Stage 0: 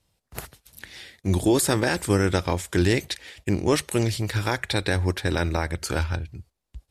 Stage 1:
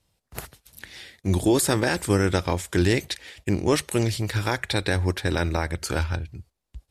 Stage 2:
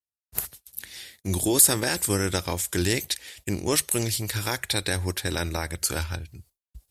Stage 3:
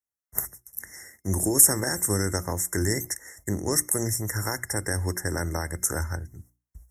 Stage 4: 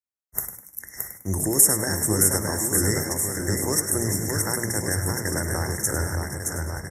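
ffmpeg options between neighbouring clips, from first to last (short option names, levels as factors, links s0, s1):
-af anull
-af "agate=range=0.0224:threshold=0.00447:ratio=3:detection=peak,aemphasis=mode=production:type=75fm,volume=0.631"
-filter_complex "[0:a]acrossover=split=260|3000[s0][s1][s2];[s1]acompressor=threshold=0.0447:ratio=6[s3];[s0][s3][s2]amix=inputs=3:normalize=0,bandreject=f=60:t=h:w=6,bandreject=f=120:t=h:w=6,bandreject=f=180:t=h:w=6,bandreject=f=240:t=h:w=6,bandreject=f=300:t=h:w=6,bandreject=f=360:t=h:w=6,afftfilt=real='re*(1-between(b*sr/4096,2100,5300))':imag='im*(1-between(b*sr/4096,2100,5300))':win_size=4096:overlap=0.75,volume=1.12"
-filter_complex "[0:a]asplit=2[s0][s1];[s1]asplit=4[s2][s3][s4][s5];[s2]adelay=101,afreqshift=56,volume=0.316[s6];[s3]adelay=202,afreqshift=112,volume=0.114[s7];[s4]adelay=303,afreqshift=168,volume=0.0412[s8];[s5]adelay=404,afreqshift=224,volume=0.0148[s9];[s6][s7][s8][s9]amix=inputs=4:normalize=0[s10];[s0][s10]amix=inputs=2:normalize=0,agate=range=0.447:threshold=0.00316:ratio=16:detection=peak,asplit=2[s11][s12];[s12]aecho=0:1:620|1147|1595|1976|2299:0.631|0.398|0.251|0.158|0.1[s13];[s11][s13]amix=inputs=2:normalize=0"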